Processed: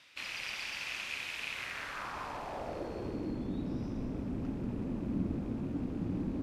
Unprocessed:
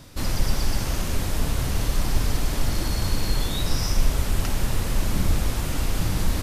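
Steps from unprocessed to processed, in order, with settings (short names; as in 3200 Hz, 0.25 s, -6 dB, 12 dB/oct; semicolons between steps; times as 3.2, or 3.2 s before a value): rattling part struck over -25 dBFS, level -25 dBFS; split-band echo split 470 Hz, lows 0.448 s, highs 0.188 s, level -7.5 dB; band-pass sweep 2500 Hz -> 260 Hz, 1.49–3.4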